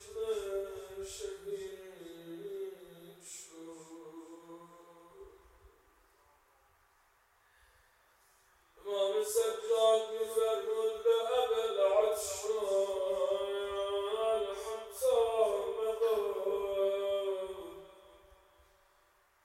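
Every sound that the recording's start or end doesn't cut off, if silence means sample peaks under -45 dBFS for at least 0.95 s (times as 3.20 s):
8.86–17.90 s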